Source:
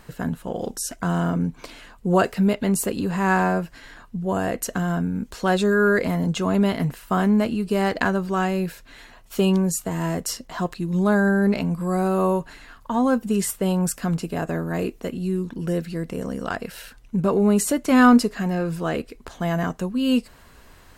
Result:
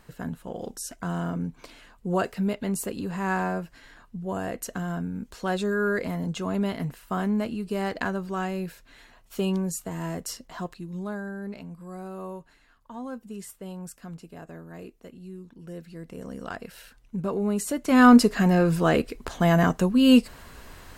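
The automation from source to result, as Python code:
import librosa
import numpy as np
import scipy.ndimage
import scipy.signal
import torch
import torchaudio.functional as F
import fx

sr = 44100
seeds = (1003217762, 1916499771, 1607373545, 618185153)

y = fx.gain(x, sr, db=fx.line((10.53, -7.0), (11.27, -16.5), (15.61, -16.5), (16.37, -8.0), (17.63, -8.0), (18.34, 4.0)))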